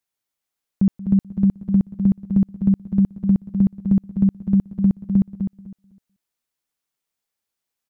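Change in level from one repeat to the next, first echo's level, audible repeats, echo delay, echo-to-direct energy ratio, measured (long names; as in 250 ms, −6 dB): repeats not evenly spaced, −18.0 dB, 4, 180 ms, −7.0 dB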